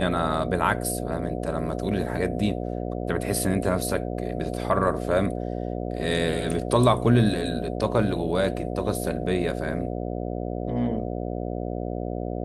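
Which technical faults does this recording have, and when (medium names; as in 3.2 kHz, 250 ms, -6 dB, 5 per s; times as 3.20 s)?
buzz 60 Hz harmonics 12 -30 dBFS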